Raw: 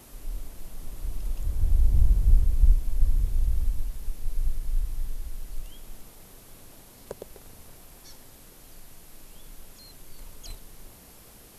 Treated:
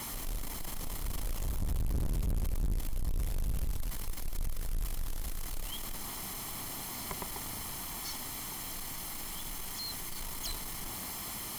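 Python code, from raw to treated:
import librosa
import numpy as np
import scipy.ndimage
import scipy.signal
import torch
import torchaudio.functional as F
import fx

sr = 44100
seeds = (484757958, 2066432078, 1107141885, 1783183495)

y = fx.lower_of_two(x, sr, delay_ms=0.96)
y = fx.low_shelf(y, sr, hz=140.0, db=-11.0)
y = np.clip(y, -10.0 ** (-31.0 / 20.0), 10.0 ** (-31.0 / 20.0))
y = fx.power_curve(y, sr, exponent=0.5)
y = F.gain(torch.from_numpy(y), 3.0).numpy()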